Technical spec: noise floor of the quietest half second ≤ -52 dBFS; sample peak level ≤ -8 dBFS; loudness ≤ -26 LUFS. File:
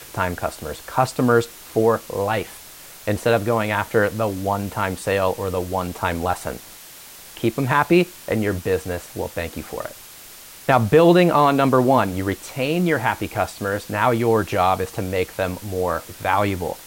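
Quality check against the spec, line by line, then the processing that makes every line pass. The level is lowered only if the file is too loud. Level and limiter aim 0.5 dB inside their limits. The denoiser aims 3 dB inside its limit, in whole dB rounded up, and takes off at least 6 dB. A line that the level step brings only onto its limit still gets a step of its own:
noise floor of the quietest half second -42 dBFS: fail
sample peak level -4.0 dBFS: fail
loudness -21.0 LUFS: fail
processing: noise reduction 8 dB, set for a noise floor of -42 dBFS; trim -5.5 dB

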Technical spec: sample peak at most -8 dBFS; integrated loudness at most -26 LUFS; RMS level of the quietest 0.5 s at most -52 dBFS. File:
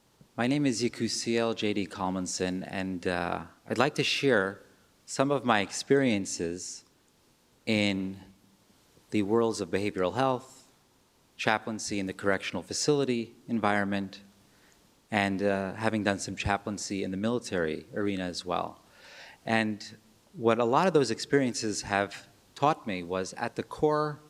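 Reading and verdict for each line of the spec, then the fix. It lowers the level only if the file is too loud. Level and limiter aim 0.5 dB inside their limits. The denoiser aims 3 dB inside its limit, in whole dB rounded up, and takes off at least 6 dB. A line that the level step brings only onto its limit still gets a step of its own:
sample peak -6.5 dBFS: fail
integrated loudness -29.5 LUFS: pass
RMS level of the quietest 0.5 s -65 dBFS: pass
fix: peak limiter -8.5 dBFS

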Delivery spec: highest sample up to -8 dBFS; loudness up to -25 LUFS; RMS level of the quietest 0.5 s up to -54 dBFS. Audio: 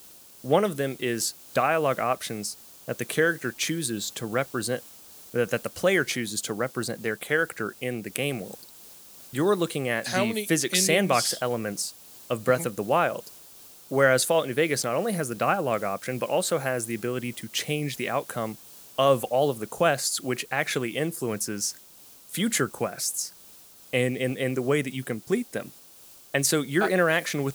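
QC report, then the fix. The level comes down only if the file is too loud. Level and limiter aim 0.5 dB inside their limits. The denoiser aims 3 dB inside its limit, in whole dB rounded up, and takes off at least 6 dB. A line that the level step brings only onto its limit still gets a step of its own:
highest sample -4.5 dBFS: fail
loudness -26.5 LUFS: pass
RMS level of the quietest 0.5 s -51 dBFS: fail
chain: noise reduction 6 dB, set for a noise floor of -51 dBFS; peak limiter -8.5 dBFS

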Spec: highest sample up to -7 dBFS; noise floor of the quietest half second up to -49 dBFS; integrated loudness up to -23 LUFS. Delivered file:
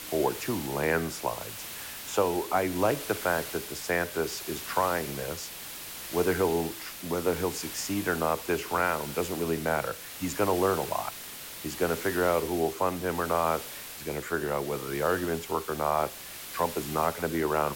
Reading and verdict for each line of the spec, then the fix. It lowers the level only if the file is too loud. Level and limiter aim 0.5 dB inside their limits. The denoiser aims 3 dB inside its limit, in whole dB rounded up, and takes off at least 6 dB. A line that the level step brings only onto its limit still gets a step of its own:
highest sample -12.5 dBFS: pass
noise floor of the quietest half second -42 dBFS: fail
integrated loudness -29.5 LUFS: pass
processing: noise reduction 10 dB, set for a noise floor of -42 dBFS

